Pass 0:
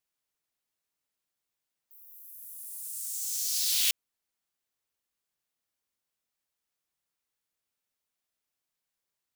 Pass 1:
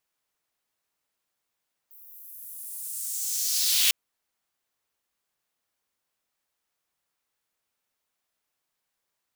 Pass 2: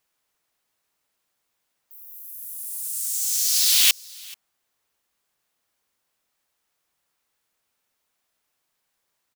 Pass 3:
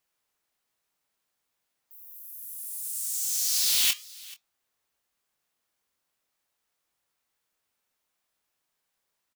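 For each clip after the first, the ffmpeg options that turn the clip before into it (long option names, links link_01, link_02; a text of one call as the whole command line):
ffmpeg -i in.wav -af "equalizer=frequency=960:width=0.49:gain=4.5,volume=3.5dB" out.wav
ffmpeg -i in.wav -af "aecho=1:1:432:0.0668,volume=5.5dB" out.wav
ffmpeg -i in.wav -filter_complex "[0:a]flanger=delay=0.9:depth=7:regen=-89:speed=0.41:shape=triangular,asplit=2[link_01][link_02];[link_02]adelay=23,volume=-10dB[link_03];[link_01][link_03]amix=inputs=2:normalize=0,asoftclip=type=tanh:threshold=-16dB" out.wav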